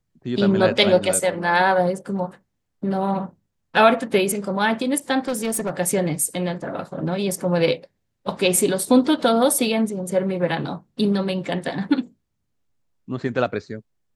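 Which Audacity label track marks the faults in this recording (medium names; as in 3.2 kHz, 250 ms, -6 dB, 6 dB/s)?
5.280000	5.700000	clipped -20 dBFS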